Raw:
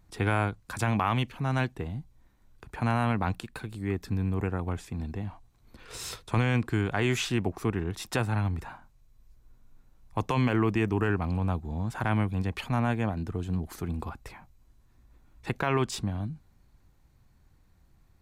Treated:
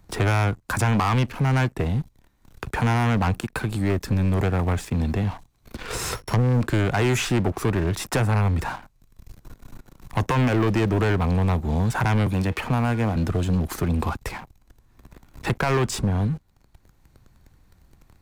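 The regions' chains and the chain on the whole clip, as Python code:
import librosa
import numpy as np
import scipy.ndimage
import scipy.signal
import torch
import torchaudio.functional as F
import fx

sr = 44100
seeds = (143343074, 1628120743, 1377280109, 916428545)

y = fx.chain(x, sr, fx.sample_sort(block=8),
    fx.env_lowpass_down(base_hz=730.0, full_db=-21.5), at=(6.15, 6.61))
y = fx.chain(y, sr, fx.comb_fb(f0_hz=160.0, decay_s=0.86, harmonics='all', damping=0.0, mix_pct=50),
    fx.band_squash(depth_pct=70), at=(12.26, 13.16))
y = fx.dynamic_eq(y, sr, hz=3700.0, q=1.3, threshold_db=-51.0, ratio=4.0, max_db=-6)
y = fx.leveller(y, sr, passes=3)
y = fx.band_squash(y, sr, depth_pct=40)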